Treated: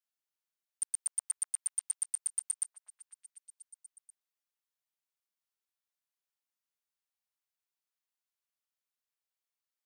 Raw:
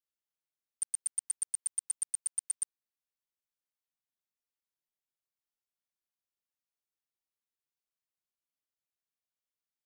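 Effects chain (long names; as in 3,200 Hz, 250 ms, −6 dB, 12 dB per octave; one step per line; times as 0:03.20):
high-pass filter 660 Hz 12 dB per octave
echo through a band-pass that steps 245 ms, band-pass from 870 Hz, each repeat 0.7 octaves, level −8.5 dB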